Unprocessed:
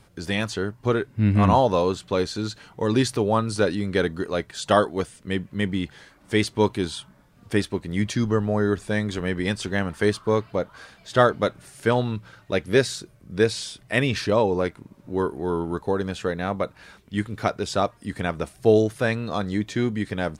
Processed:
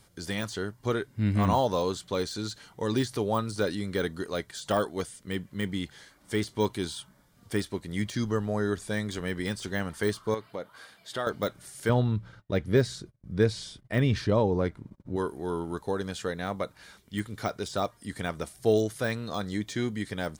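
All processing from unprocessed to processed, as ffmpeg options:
-filter_complex "[0:a]asettb=1/sr,asplit=3[a][b][c];[a]atrim=end=10.344[d];[b]atrim=start=10.34:end=11.27,asetpts=PTS-STARTPTS,afade=t=in:d=0.004:c=qsin,afade=t=out:st=0.926:d=0.004:c=qsin,highpass=f=220:p=1,equalizer=f=6.2k:w=1.6:g=-7,acompressor=threshold=-27dB:ratio=2:attack=3.2:release=140:knee=1:detection=peak[e];[c]atrim=start=11.266[f];[d][e]acrossfade=d=0.004:c1=hsin:c2=qsin[g];[g][f]acrossfade=d=0.004:c1=qsin:c2=hsin,asettb=1/sr,asplit=3[h][i][j];[h]atrim=end=11.894[k];[i]atrim=start=11.89:end=15.16,asetpts=PTS-STARTPTS,afade=t=in:d=0.004:c=qsin,afade=t=out:st=3.266:d=0.004:c=qsin,agate=range=-26dB:threshold=-51dB:ratio=16:release=100:detection=peak,lowpass=f=2.1k:p=1,lowshelf=f=200:g=11.5[l];[j]atrim=start=15.156[m];[k][l]acrossfade=d=0.004:c1=hsin:c2=qsin[n];[n][m]acrossfade=d=0.004:c1=qsin:c2=hsin,deesser=0.85,highshelf=f=3.3k:g=10,bandreject=f=2.6k:w=9.3,volume=-6.5dB"

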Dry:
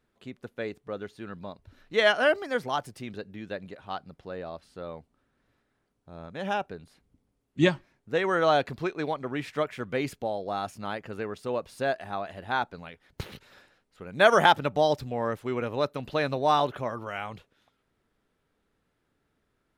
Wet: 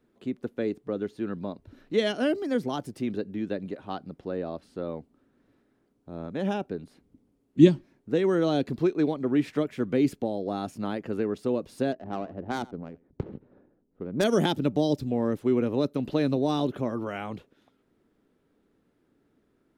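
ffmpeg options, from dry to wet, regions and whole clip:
-filter_complex "[0:a]asettb=1/sr,asplit=3[a][b][c];[a]atrim=end=11.924[d];[b]atrim=start=11.92:end=14.24,asetpts=PTS-STARTPTS,afade=t=in:d=0.004:c=qsin,afade=t=out:st=2.316:d=0.004:c=qsin,adynamicsmooth=sensitivity=2:basefreq=560,aecho=1:1:85:0.075,atrim=end_sample=102312[e];[c]atrim=start=14.236[f];[d][e]acrossfade=d=0.004:c1=hsin:c2=qsin[g];[g][f]acrossfade=d=0.004:c1=qsin:c2=hsin,equalizer=f=290:w=0.73:g=13,acrossover=split=380|3000[h][i][j];[i]acompressor=threshold=-30dB:ratio=6[k];[h][k][j]amix=inputs=3:normalize=0,volume=-1.5dB"

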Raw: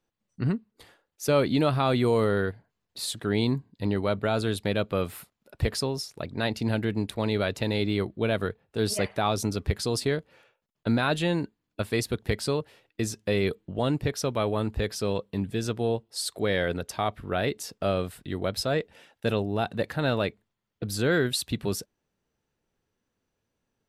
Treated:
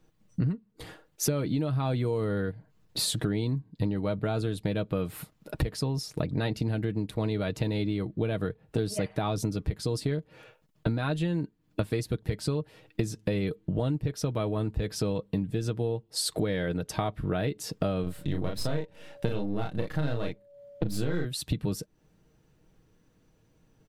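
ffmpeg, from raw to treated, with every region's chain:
-filter_complex "[0:a]asettb=1/sr,asplit=3[a][b][c];[a]atrim=end=18.034[d];[b]atrim=start=18.03:end=21.25,asetpts=PTS-STARTPTS,afade=t=in:d=0.004:c=qsin,afade=t=out:st=3.216:d=0.004:c=qsin,aeval=exprs='if(lt(val(0),0),0.447*val(0),val(0))':c=same,aeval=exprs='val(0)+0.00224*sin(2*PI*570*n/s)':c=same,asplit=2[e][f];[f]adelay=34,volume=-2.5dB[g];[e][g]amix=inputs=2:normalize=0,atrim=end_sample=142002[h];[c]atrim=start=21.246[i];[d][h]acrossfade=d=0.004:c1=hsin:c2=qsin[j];[j][i]acrossfade=d=0.004:c1=qsin:c2=hsin,lowshelf=f=360:g=11,aecho=1:1:6.4:0.45,acompressor=threshold=-34dB:ratio=10,volume=8dB"

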